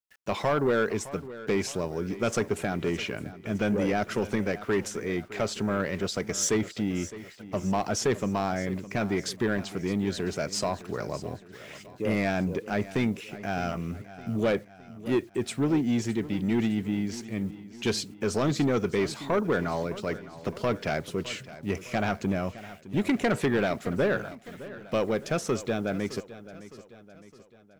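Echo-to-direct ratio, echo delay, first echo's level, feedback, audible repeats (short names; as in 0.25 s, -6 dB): -15.0 dB, 0.612 s, -16.0 dB, 50%, 4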